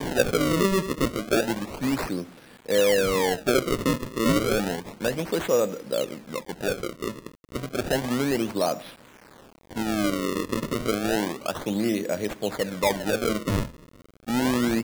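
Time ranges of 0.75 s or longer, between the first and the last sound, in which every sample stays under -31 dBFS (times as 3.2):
8.81–9.73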